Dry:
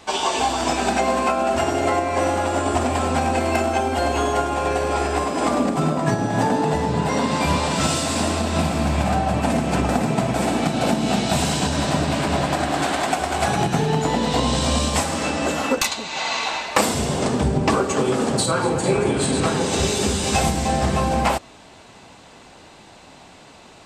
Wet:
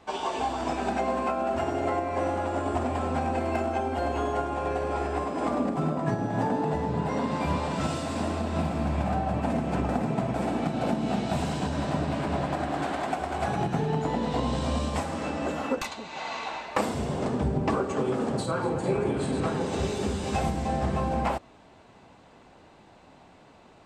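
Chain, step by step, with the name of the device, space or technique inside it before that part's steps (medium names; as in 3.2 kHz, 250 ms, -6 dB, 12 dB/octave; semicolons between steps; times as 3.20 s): through cloth (treble shelf 2.8 kHz -13 dB); trim -6.5 dB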